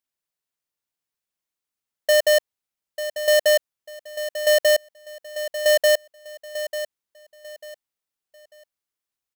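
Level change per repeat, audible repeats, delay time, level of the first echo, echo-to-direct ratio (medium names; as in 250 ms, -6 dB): -11.0 dB, 3, 894 ms, -11.5 dB, -11.0 dB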